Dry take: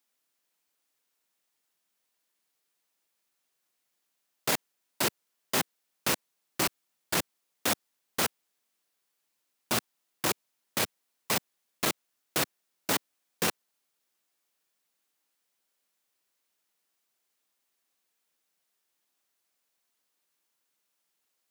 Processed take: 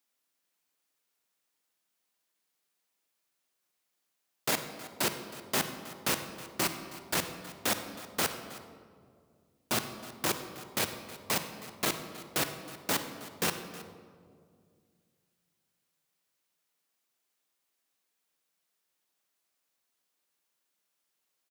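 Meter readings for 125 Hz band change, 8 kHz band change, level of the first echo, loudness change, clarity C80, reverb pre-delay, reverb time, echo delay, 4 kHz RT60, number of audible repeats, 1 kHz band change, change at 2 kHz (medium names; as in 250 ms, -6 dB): -0.5 dB, -1.5 dB, -17.5 dB, -2.0 dB, 9.0 dB, 15 ms, 2.1 s, 318 ms, 1.0 s, 1, -1.0 dB, -1.5 dB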